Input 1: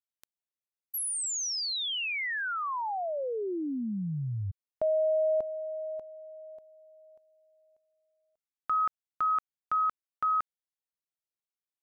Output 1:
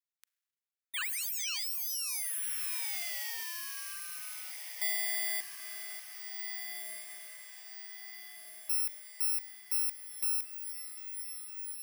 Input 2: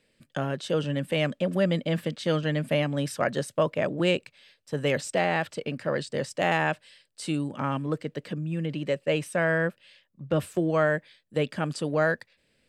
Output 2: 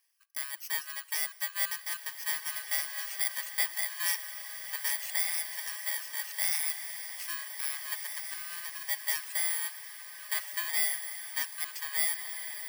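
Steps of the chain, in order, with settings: bit-reversed sample order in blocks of 32 samples; reverb removal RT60 0.78 s; ladder high-pass 1.2 kHz, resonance 30%; echo that smears into a reverb 1696 ms, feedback 53%, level -7.5 dB; Schroeder reverb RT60 1.7 s, combs from 33 ms, DRR 19.5 dB; trim +3.5 dB

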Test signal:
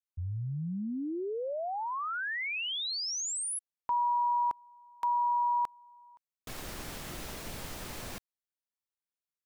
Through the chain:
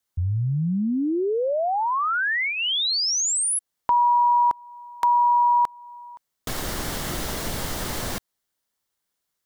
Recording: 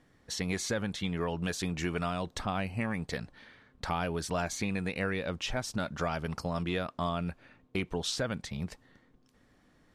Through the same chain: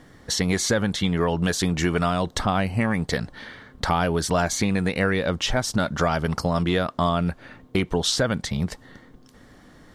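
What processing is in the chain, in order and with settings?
peaking EQ 2.5 kHz -7.5 dB 0.2 oct; in parallel at +1 dB: compression, threshold -43 dBFS; on the sum: trim +8.5 dB

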